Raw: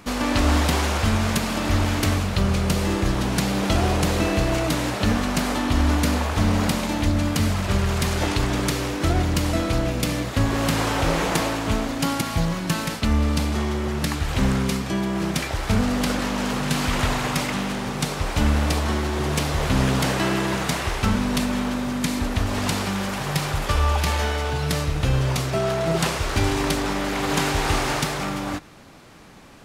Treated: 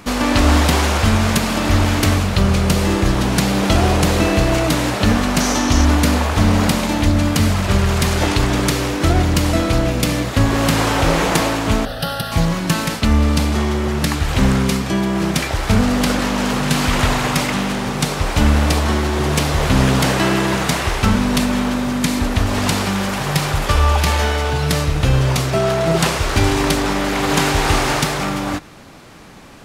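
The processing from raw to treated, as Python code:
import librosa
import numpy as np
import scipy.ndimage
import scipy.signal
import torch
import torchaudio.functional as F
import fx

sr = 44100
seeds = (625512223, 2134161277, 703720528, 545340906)

y = fx.peak_eq(x, sr, hz=6000.0, db=13.0, octaves=0.4, at=(5.4, 5.85))
y = fx.fixed_phaser(y, sr, hz=1500.0, stages=8, at=(11.85, 12.32))
y = y * 10.0 ** (6.0 / 20.0)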